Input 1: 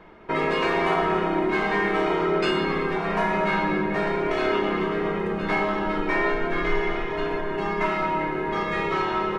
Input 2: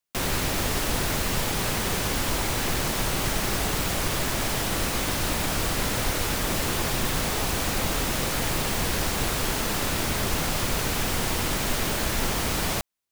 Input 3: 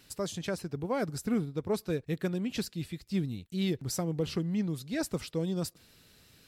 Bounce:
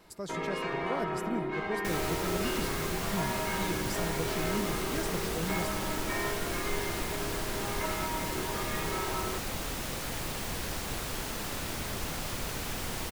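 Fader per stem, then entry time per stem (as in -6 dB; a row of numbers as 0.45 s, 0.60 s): -11.0 dB, -9.5 dB, -5.5 dB; 0.00 s, 1.70 s, 0.00 s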